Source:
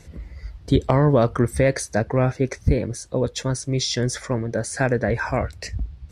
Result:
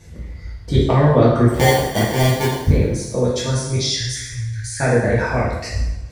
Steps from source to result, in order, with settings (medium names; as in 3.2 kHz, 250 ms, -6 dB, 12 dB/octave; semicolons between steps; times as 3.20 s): 1.49–2.59 s: sample-rate reducer 1.3 kHz, jitter 0%; 3.76–4.80 s: Chebyshev band-stop 110–1800 Hz, order 4; two-slope reverb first 0.89 s, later 3 s, from -28 dB, DRR -6.5 dB; trim -3 dB